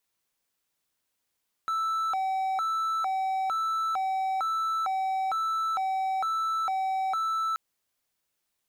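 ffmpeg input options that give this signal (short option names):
-f lavfi -i "aevalsrc='0.0668*(1-4*abs(mod((1042*t+278/1.1*(0.5-abs(mod(1.1*t,1)-0.5)))+0.25,1)-0.5))':d=5.88:s=44100"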